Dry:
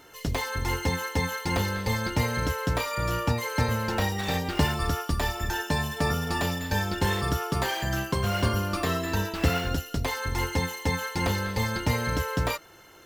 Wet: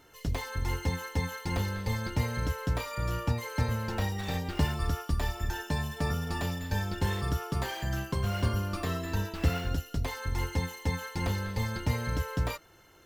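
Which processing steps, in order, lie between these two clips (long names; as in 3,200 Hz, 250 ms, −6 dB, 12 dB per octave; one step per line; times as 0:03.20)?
low-shelf EQ 140 Hz +8.5 dB
level −7.5 dB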